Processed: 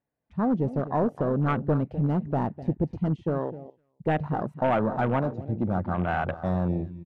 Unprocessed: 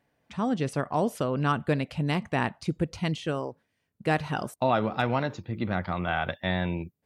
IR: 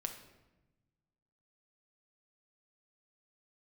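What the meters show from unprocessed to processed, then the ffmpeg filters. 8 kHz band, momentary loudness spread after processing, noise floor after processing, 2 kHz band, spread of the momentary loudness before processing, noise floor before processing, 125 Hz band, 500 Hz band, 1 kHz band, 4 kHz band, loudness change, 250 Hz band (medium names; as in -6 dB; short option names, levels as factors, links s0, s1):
under -20 dB, 5 LU, -73 dBFS, -4.5 dB, 7 LU, -78 dBFS, +3.0 dB, +1.5 dB, 0.0 dB, under -10 dB, +1.5 dB, +3.0 dB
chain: -filter_complex "[0:a]lowpass=f=1200:p=1,asoftclip=type=hard:threshold=0.075,asplit=2[s0][s1];[s1]aecho=0:1:253|506:0.224|0.0425[s2];[s0][s2]amix=inputs=2:normalize=0,afwtdn=0.0141,volume=1.58"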